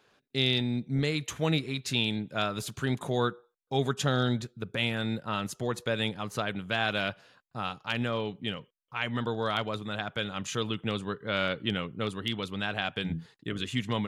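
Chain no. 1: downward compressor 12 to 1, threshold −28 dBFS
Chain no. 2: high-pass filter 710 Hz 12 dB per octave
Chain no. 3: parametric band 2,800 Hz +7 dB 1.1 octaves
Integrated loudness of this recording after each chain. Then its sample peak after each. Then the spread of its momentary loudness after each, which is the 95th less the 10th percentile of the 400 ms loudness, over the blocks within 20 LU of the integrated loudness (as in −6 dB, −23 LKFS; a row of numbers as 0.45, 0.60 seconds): −34.5, −34.0, −28.5 LKFS; −16.0, −14.0, −8.0 dBFS; 5, 9, 8 LU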